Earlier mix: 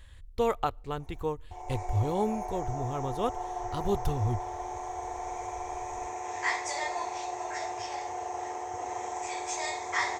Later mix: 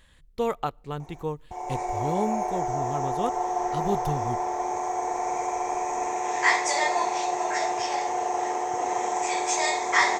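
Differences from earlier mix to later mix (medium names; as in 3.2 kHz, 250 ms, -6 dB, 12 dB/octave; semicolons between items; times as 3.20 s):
background +8.5 dB; master: add resonant low shelf 120 Hz -7.5 dB, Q 3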